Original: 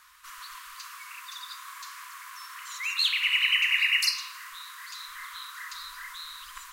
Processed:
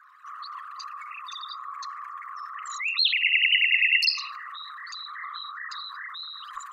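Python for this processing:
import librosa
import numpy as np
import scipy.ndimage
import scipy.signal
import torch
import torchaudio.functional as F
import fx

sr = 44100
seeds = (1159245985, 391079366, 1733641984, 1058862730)

y = fx.envelope_sharpen(x, sr, power=3.0)
y = fx.dynamic_eq(y, sr, hz=940.0, q=1.9, threshold_db=-49.0, ratio=4.0, max_db=6)
y = y * 10.0 ** (3.0 / 20.0)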